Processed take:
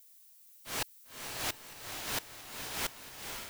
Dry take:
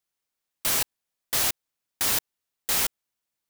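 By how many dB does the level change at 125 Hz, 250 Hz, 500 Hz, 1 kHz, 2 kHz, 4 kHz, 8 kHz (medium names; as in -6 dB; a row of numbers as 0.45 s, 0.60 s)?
-5.0 dB, -5.5 dB, -5.5 dB, -6.0 dB, -6.5 dB, -9.0 dB, -12.5 dB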